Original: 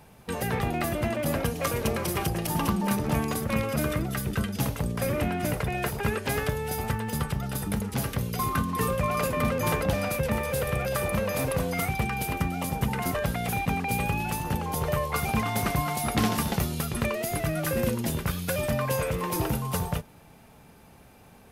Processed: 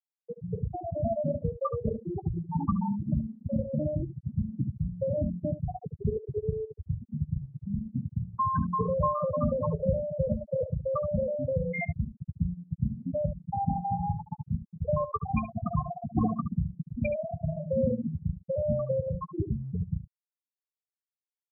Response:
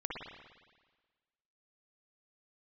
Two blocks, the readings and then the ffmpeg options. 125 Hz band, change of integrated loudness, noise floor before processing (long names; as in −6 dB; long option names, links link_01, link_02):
−2.0 dB, −3.5 dB, −53 dBFS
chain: -filter_complex "[0:a]afftfilt=real='re*gte(hypot(re,im),0.251)':imag='im*gte(hypot(re,im),0.251)':win_size=1024:overlap=0.75,lowshelf=frequency=350:gain=-5,asplit=2[link_01][link_02];[link_02]aecho=0:1:12|73:0.188|0.224[link_03];[link_01][link_03]amix=inputs=2:normalize=0,volume=4.5dB"